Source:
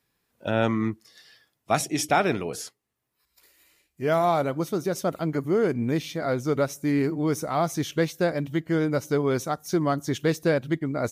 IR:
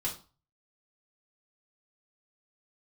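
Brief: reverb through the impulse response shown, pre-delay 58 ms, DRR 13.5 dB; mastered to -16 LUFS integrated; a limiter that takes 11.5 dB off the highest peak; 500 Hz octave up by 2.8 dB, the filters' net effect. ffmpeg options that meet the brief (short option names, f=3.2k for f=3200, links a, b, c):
-filter_complex "[0:a]equalizer=f=500:t=o:g=3.5,alimiter=limit=-18dB:level=0:latency=1,asplit=2[a][b];[1:a]atrim=start_sample=2205,adelay=58[c];[b][c]afir=irnorm=-1:irlink=0,volume=-17dB[d];[a][d]amix=inputs=2:normalize=0,volume=12dB"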